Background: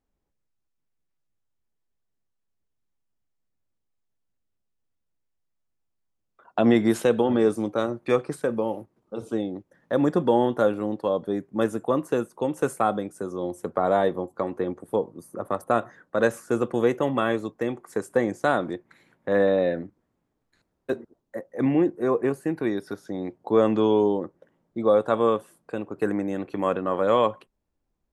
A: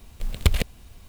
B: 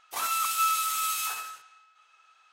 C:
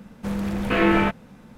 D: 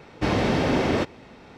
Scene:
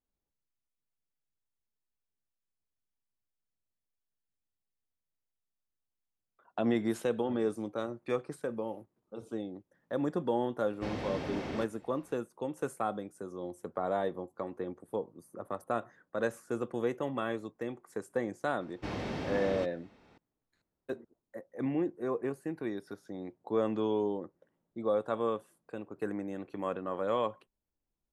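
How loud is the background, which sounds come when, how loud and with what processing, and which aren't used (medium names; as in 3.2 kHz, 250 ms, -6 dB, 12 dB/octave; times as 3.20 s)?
background -10.5 dB
10.60 s: add D -15.5 dB
18.61 s: add D -14.5 dB
not used: A, B, C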